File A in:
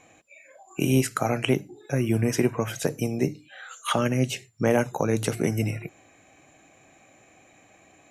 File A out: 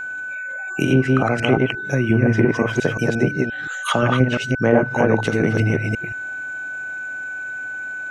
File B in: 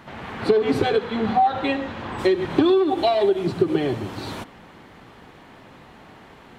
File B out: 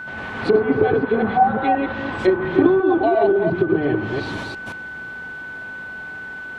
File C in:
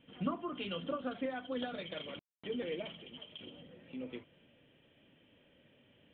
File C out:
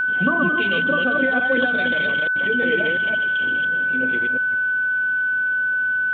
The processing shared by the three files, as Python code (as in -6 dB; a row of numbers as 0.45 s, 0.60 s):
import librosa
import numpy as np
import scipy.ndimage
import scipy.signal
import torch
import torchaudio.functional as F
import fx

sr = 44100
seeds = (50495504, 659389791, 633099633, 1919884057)

y = fx.reverse_delay(x, sr, ms=175, wet_db=-1.5)
y = fx.env_lowpass_down(y, sr, base_hz=1400.0, full_db=-15.0)
y = y + 10.0 ** (-31.0 / 20.0) * np.sin(2.0 * np.pi * 1500.0 * np.arange(len(y)) / sr)
y = y * 10.0 ** (-20 / 20.0) / np.sqrt(np.mean(np.square(y)))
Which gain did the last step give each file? +4.5 dB, +0.5 dB, +13.0 dB